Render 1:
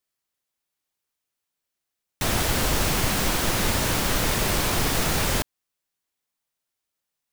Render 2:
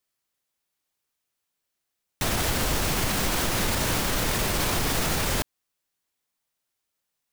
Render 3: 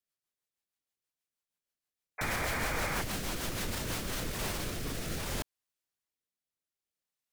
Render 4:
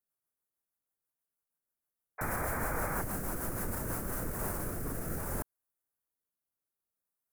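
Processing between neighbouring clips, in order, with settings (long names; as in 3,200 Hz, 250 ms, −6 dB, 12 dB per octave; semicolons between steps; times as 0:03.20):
brickwall limiter −17.5 dBFS, peak gain reduction 7.5 dB; level +2 dB
rotating-speaker cabinet horn 6.3 Hz, later 0.6 Hz, at 0:03.77; sound drawn into the spectrogram noise, 0:02.18–0:03.02, 450–2,500 Hz −28 dBFS; level −8 dB
drawn EQ curve 1,500 Hz 0 dB, 3,400 Hz −24 dB, 11,000 Hz +4 dB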